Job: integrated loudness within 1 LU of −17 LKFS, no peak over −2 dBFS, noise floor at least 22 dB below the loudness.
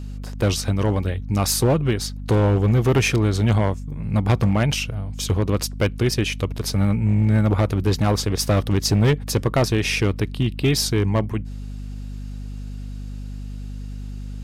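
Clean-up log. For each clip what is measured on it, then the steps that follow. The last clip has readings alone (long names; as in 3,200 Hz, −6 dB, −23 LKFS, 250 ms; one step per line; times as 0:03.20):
share of clipped samples 2.0%; peaks flattened at −12.0 dBFS; mains hum 50 Hz; hum harmonics up to 250 Hz; level of the hum −28 dBFS; integrated loudness −21.0 LKFS; sample peak −12.0 dBFS; target loudness −17.0 LKFS
→ clipped peaks rebuilt −12 dBFS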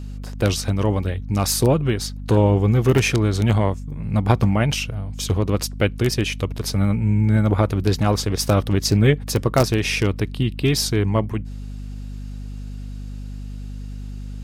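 share of clipped samples 0.0%; mains hum 50 Hz; hum harmonics up to 250 Hz; level of the hum −28 dBFS
→ hum removal 50 Hz, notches 5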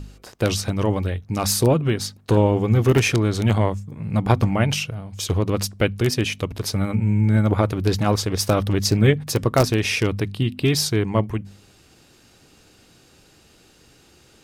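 mains hum none found; integrated loudness −21.0 LKFS; sample peak −2.5 dBFS; target loudness −17.0 LKFS
→ level +4 dB
brickwall limiter −2 dBFS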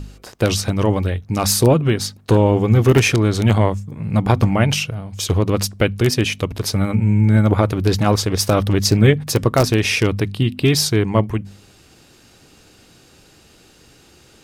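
integrated loudness −17.5 LKFS; sample peak −2.0 dBFS; background noise floor −50 dBFS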